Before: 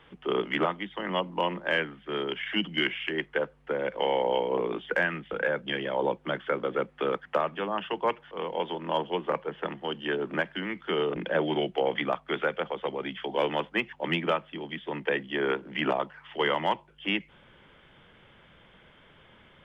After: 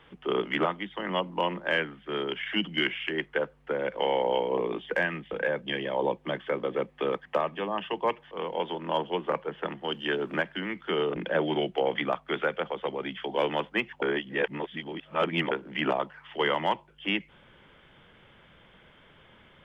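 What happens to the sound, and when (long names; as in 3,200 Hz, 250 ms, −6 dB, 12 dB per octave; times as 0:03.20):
0:04.51–0:08.35: notch filter 1,400 Hz, Q 5.6
0:09.88–0:10.39: high-shelf EQ 3,400 Hz +8 dB
0:14.02–0:15.51: reverse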